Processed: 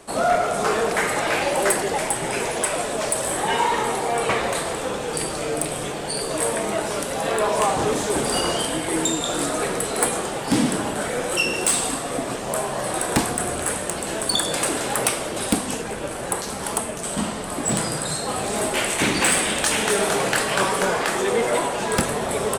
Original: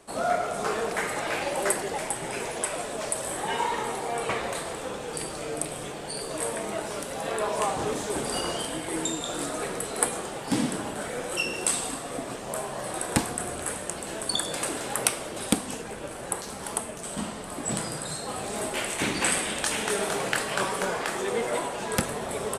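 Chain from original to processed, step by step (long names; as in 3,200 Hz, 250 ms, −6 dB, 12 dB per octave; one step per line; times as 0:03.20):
soft clipping −18.5 dBFS, distortion −15 dB
level +8 dB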